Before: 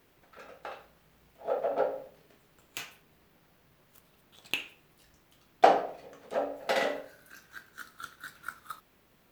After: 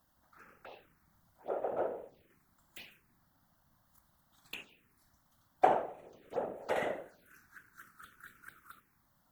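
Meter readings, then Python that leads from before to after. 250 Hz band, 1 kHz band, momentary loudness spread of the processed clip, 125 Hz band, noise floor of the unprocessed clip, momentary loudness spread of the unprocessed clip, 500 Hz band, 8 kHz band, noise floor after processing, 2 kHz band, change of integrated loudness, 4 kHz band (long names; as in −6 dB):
−4.0 dB, −5.5 dB, 25 LU, −1.5 dB, −65 dBFS, 24 LU, −6.0 dB, below −10 dB, −73 dBFS, −8.0 dB, −4.5 dB, −13.0 dB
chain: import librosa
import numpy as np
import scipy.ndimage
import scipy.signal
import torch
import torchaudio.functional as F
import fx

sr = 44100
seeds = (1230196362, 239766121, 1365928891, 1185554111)

y = fx.hpss(x, sr, part='harmonic', gain_db=6)
y = fx.whisperise(y, sr, seeds[0])
y = fx.env_phaser(y, sr, low_hz=380.0, high_hz=4800.0, full_db=-29.5)
y = y * librosa.db_to_amplitude(-8.5)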